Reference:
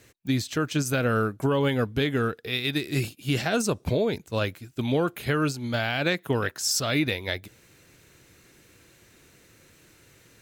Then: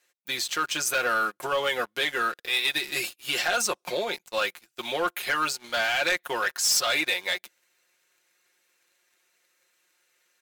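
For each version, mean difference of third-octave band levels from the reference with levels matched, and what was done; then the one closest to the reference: 9.5 dB: HPF 750 Hz 12 dB/oct; comb 5.6 ms, depth 72%; sample leveller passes 3; gain -7 dB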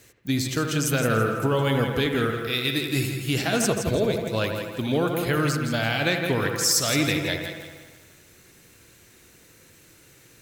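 6.0 dB: high shelf 5100 Hz +7 dB; dark delay 80 ms, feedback 71%, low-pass 2400 Hz, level -7 dB; lo-fi delay 0.166 s, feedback 35%, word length 8-bit, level -8 dB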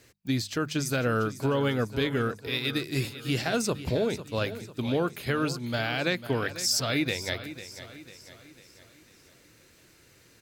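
4.0 dB: bell 4800 Hz +5.5 dB 0.29 oct; notches 50/100/150/200 Hz; feedback echo 0.498 s, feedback 47%, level -13.5 dB; gain -2.5 dB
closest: third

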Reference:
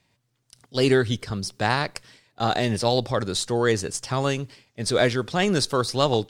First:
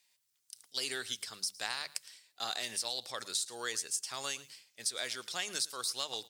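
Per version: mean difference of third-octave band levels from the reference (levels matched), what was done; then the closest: 10.5 dB: differentiator; notches 50/100/150/200 Hz; compressor 5:1, threshold -35 dBFS, peak gain reduction 11 dB; on a send: echo 0.112 s -20 dB; on the sum: gain +3 dB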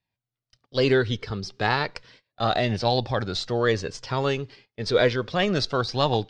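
3.5 dB: gate -52 dBFS, range -17 dB; LPF 5100 Hz 24 dB/oct; notch 850 Hz, Q 26; flange 0.33 Hz, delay 1.1 ms, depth 1.4 ms, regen +51%; gain +4 dB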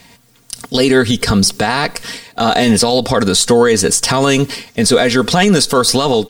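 5.5 dB: high shelf 10000 Hz +10 dB; comb 4.3 ms, depth 57%; compressor 6:1, threshold -28 dBFS, peak gain reduction 13.5 dB; maximiser +23.5 dB; gain -1 dB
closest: second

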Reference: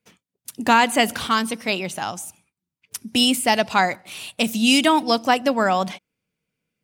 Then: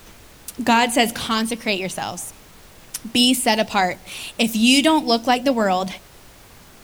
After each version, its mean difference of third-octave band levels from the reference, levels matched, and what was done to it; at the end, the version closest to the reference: 3.0 dB: added noise pink -48 dBFS; flange 0.5 Hz, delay 1.6 ms, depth 5.2 ms, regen -82%; dynamic EQ 1300 Hz, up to -7 dB, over -38 dBFS, Q 1.3; gain +7 dB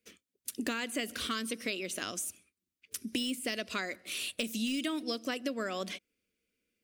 6.0 dB: de-esser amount 45%; fixed phaser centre 350 Hz, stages 4; compressor 6:1, threshold -32 dBFS, peak gain reduction 15 dB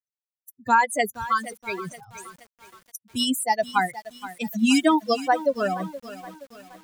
10.5 dB: per-bin expansion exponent 3; bell 3600 Hz -7.5 dB 1.2 oct; lo-fi delay 0.472 s, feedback 55%, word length 7-bit, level -14.5 dB; gain +2.5 dB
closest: first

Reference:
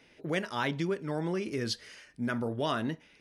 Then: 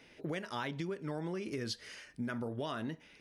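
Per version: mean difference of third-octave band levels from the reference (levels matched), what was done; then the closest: 2.5 dB: compressor, threshold -36 dBFS, peak gain reduction 10.5 dB; gain +1 dB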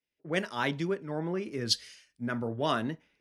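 4.5 dB: three-band expander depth 100%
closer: first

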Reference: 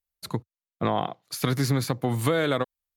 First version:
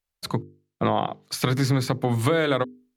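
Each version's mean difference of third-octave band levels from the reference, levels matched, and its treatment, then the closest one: 2.0 dB: high shelf 9700 Hz -11 dB; notches 50/100/150/200/250/300/350/400/450 Hz; in parallel at +2 dB: compressor, threshold -32 dBFS, peak gain reduction 12.5 dB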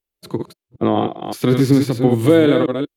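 6.5 dB: reverse delay 0.19 s, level -5.5 dB; bell 2900 Hz +5 dB 0.66 oct; harmonic-percussive split harmonic +8 dB; bell 340 Hz +14.5 dB 1.3 oct; gain -4 dB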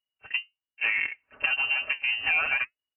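18.0 dB: comb 5.7 ms, depth 95%; flange 0.81 Hz, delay 2.6 ms, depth 9.1 ms, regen +69%; on a send: reverse echo 34 ms -21 dB; on the sum: inverted band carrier 2900 Hz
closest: first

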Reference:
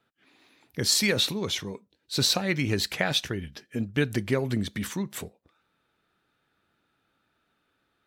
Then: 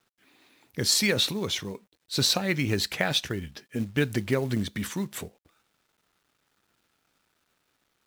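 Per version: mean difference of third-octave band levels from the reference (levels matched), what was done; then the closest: 1.5 dB: companded quantiser 6-bit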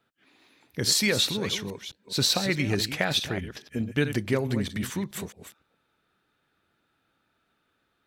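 3.0 dB: reverse delay 0.213 s, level -10 dB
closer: first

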